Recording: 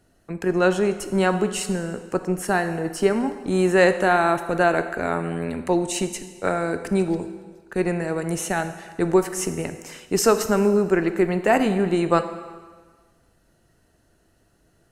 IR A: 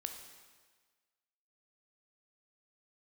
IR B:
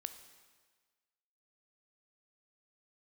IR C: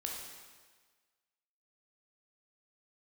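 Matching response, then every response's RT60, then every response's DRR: B; 1.5, 1.5, 1.5 seconds; 4.5, 9.0, −1.0 decibels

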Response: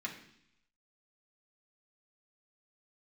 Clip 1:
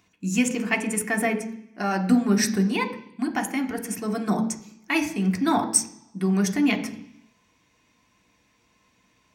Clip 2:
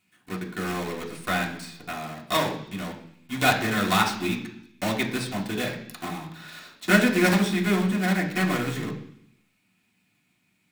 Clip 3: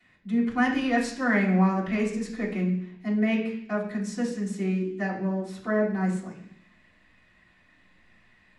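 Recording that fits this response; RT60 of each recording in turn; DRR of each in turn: 2; 0.70, 0.70, 0.70 seconds; 4.0, −3.0, −11.0 decibels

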